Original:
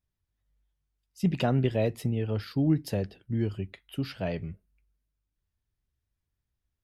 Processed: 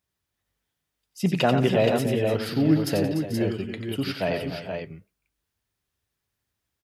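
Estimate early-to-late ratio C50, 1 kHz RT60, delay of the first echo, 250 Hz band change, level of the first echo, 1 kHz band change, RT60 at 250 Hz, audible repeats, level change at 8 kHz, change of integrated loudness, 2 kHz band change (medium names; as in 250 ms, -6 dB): no reverb, no reverb, 90 ms, +5.5 dB, -6.5 dB, +9.0 dB, no reverb, 5, +10.0 dB, +5.0 dB, +10.0 dB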